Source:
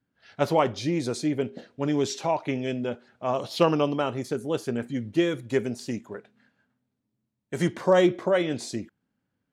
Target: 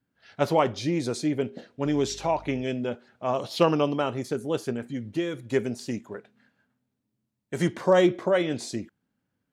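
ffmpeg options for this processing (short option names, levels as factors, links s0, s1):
-filter_complex "[0:a]asettb=1/sr,asplit=3[s0][s1][s2];[s0]atrim=end=1.864[s3];[s1]atrim=start=1.86:end=2.63,asetpts=PTS-STARTPTS,afade=t=in:d=0.004:c=qsin,afade=t=out:st=0.766:d=0.004:c=qsin,aeval=exprs='val(0)+0.00447*(sin(2*PI*50*n/s)+sin(2*PI*2*50*n/s)/2+sin(2*PI*3*50*n/s)/3+sin(2*PI*4*50*n/s)/4+sin(2*PI*5*50*n/s)/5)':c=same[s4];[s2]atrim=start=2.626[s5];[s3][s4]acrossfade=d=0.004:c1=hsin:c2=qsin[s6];[s6][s5]acrossfade=d=0.004:c1=qsin:c2=hsin,asettb=1/sr,asplit=3[s7][s8][s9];[s7]atrim=end=4.724[s10];[s8]atrim=start=4.72:end=5.52,asetpts=PTS-STARTPTS,afade=t=in:d=0.004:c=qsin,afade=t=out:st=0.796:d=0.004:c=qsin,acompressor=threshold=0.0224:ratio=1.5[s11];[s9]atrim=start=5.516[s12];[s10][s11]acrossfade=d=0.004:c1=hsin:c2=qsin[s13];[s13][s12]acrossfade=d=0.004:c1=qsin:c2=hsin"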